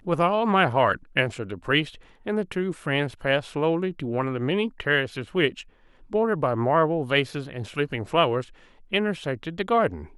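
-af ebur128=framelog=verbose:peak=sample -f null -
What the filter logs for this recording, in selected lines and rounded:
Integrated loudness:
  I:         -24.7 LUFS
  Threshold: -35.0 LUFS
Loudness range:
  LRA:         1.7 LU
  Threshold: -45.4 LUFS
  LRA low:   -26.2 LUFS
  LRA high:  -24.5 LUFS
Sample peak:
  Peak:       -6.0 dBFS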